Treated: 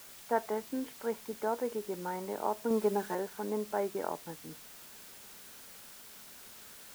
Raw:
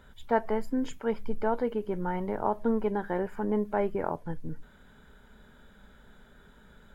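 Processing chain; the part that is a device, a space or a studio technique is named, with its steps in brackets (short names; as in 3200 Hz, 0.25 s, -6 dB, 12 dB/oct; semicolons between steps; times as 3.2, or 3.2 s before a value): wax cylinder (BPF 260–2200 Hz; wow and flutter 21 cents; white noise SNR 14 dB); 2.7–3.15 comb 4.7 ms, depth 89%; gain -4 dB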